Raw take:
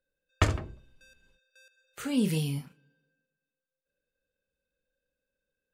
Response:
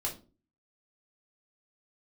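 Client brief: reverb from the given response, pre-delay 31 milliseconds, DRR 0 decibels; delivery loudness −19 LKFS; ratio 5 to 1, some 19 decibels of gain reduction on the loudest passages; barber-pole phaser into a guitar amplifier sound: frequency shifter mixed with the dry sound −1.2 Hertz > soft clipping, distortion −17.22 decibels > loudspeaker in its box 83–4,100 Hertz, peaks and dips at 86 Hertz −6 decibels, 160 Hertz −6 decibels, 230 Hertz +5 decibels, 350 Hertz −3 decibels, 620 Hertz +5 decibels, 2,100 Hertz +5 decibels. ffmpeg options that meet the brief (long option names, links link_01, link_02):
-filter_complex "[0:a]acompressor=threshold=-40dB:ratio=5,asplit=2[link_01][link_02];[1:a]atrim=start_sample=2205,adelay=31[link_03];[link_02][link_03]afir=irnorm=-1:irlink=0,volume=-3dB[link_04];[link_01][link_04]amix=inputs=2:normalize=0,asplit=2[link_05][link_06];[link_06]afreqshift=-1.2[link_07];[link_05][link_07]amix=inputs=2:normalize=1,asoftclip=threshold=-34dB,highpass=83,equalizer=frequency=86:width_type=q:width=4:gain=-6,equalizer=frequency=160:width_type=q:width=4:gain=-6,equalizer=frequency=230:width_type=q:width=4:gain=5,equalizer=frequency=350:width_type=q:width=4:gain=-3,equalizer=frequency=620:width_type=q:width=4:gain=5,equalizer=frequency=2100:width_type=q:width=4:gain=5,lowpass=frequency=4100:width=0.5412,lowpass=frequency=4100:width=1.3066,volume=30dB"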